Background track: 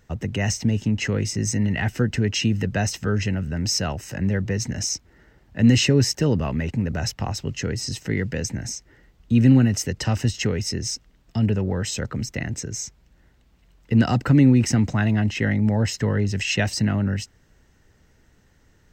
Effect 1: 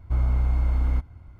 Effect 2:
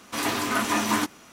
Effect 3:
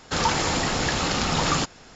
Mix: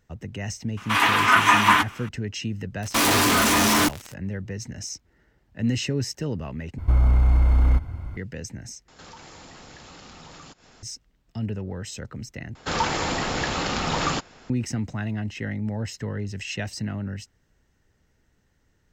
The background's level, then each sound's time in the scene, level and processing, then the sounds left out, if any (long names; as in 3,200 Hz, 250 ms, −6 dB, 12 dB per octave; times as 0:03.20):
background track −8.5 dB
0:00.77: mix in 2 −2.5 dB + flat-topped bell 1,700 Hz +13 dB 2.3 octaves
0:02.82: mix in 2 −5 dB + fuzz pedal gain 45 dB, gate −43 dBFS
0:06.78: overwrite with 1 −11 dB + boost into a limiter +23 dB
0:08.88: overwrite with 3 −4.5 dB + downward compressor 3 to 1, threshold −44 dBFS
0:12.55: overwrite with 3 −1 dB + bass and treble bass −2 dB, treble −5 dB